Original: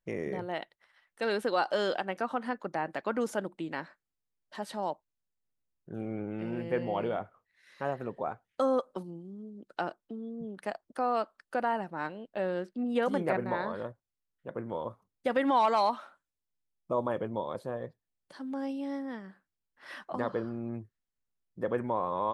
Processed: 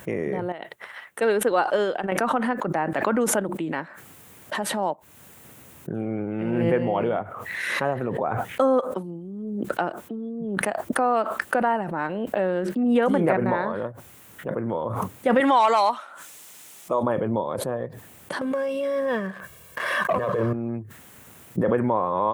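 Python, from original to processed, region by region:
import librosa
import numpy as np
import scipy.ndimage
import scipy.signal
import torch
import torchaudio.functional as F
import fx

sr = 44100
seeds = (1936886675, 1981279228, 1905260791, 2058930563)

y = fx.chain(x, sr, fx.peak_eq(hz=430.0, db=4.5, octaves=0.29),
    fx.upward_expand(threshold_db=-39.0, expansion=2.5), at=(0.52, 2.12))
y = fx.chain(y, sr, fx.highpass(hz=520.0, slope=6),
    fx.peak_eq(hz=6200.0, db=9.0, octaves=2.0),
    fx.notch(hz=1600.0, q=29.0), at=(15.4, 17.03))
y = fx.chain(y, sr, fx.over_compress(threshold_db=-36.0, ratio=-0.5),
    fx.comb(ms=1.8, depth=0.82),
    fx.leveller(passes=2), at=(18.41, 20.53))
y = scipy.signal.sosfilt(scipy.signal.butter(4, 79.0, 'highpass', fs=sr, output='sos'), y)
y = fx.peak_eq(y, sr, hz=4800.0, db=-11.0, octaves=0.88)
y = fx.pre_swell(y, sr, db_per_s=27.0)
y = F.gain(torch.from_numpy(y), 7.5).numpy()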